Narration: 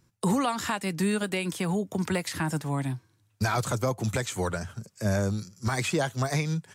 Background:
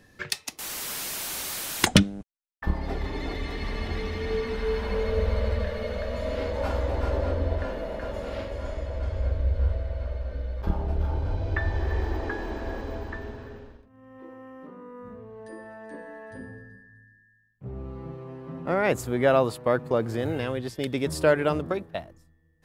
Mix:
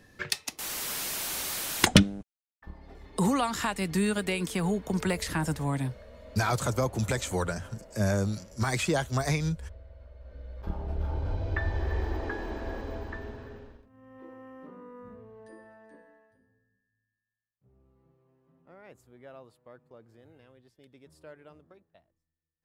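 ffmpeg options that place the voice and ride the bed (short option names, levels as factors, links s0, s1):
-filter_complex "[0:a]adelay=2950,volume=0.944[s0];[1:a]volume=5.62,afade=t=out:st=2.12:d=0.33:silence=0.125893,afade=t=in:st=10.14:d=1.15:silence=0.16788,afade=t=out:st=14.78:d=1.59:silence=0.0562341[s1];[s0][s1]amix=inputs=2:normalize=0"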